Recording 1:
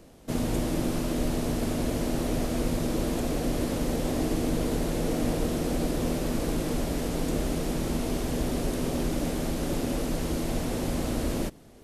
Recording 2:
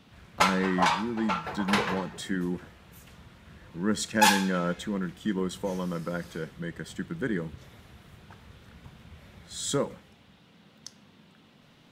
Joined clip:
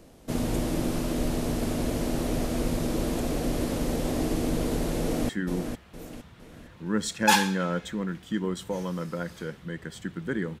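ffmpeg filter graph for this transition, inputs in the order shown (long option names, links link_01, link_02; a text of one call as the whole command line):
ffmpeg -i cue0.wav -i cue1.wav -filter_complex "[0:a]apad=whole_dur=10.6,atrim=end=10.6,atrim=end=5.292[link_01];[1:a]atrim=start=2.228:end=7.54[link_02];[link_01][link_02]acrossfade=duration=0.004:curve1=hsin:curve2=hsin,asplit=2[link_03][link_04];[link_04]afade=type=in:start_time=5.01:duration=0.01,afade=type=out:start_time=5.29:duration=0.01,aecho=0:1:460|920|1380|1840|2300:0.473151|0.189261|0.0757042|0.0302817|0.0121127[link_05];[link_03][link_05]amix=inputs=2:normalize=0" out.wav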